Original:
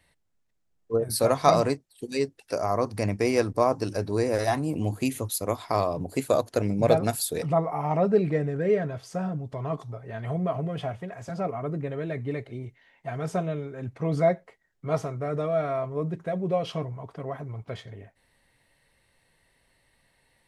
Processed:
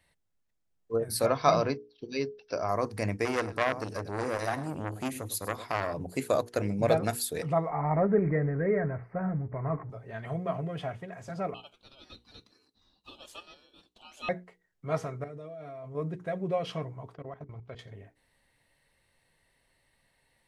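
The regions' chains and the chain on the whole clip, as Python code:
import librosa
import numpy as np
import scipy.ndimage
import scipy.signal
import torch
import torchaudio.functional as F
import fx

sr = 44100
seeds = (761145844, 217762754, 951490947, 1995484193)

y = fx.chain(x, sr, fx.brickwall_lowpass(high_hz=6100.0),
    fx.peak_eq(hz=810.0, db=-3.0, octaves=0.23),
    fx.notch(hz=1900.0, q=6.9), at=(1.26, 2.69))
y = fx.chain(y, sr, fx.echo_single(ms=103, db=-15.5),
    fx.transformer_sat(knee_hz=1600.0), at=(3.25, 5.94))
y = fx.chain(y, sr, fx.law_mismatch(coded='mu'),
    fx.ellip_lowpass(hz=2100.0, order=4, stop_db=40),
    fx.low_shelf(hz=190.0, db=7.0), at=(7.7, 9.9))
y = fx.chain(y, sr, fx.highpass(hz=980.0, slope=24),
    fx.ring_mod(carrier_hz=1900.0), at=(11.54, 14.29))
y = fx.chain(y, sr, fx.peak_eq(hz=1300.0, db=-5.5, octaves=1.0),
    fx.level_steps(step_db=19),
    fx.notch_comb(f0_hz=190.0), at=(15.24, 15.95))
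y = fx.chain(y, sr, fx.lowpass(hz=5400.0, slope=12),
    fx.level_steps(step_db=18), at=(17.15, 17.79))
y = fx.hum_notches(y, sr, base_hz=60, count=8)
y = fx.dynamic_eq(y, sr, hz=1800.0, q=1.4, threshold_db=-46.0, ratio=4.0, max_db=5)
y = y * librosa.db_to_amplitude(-4.0)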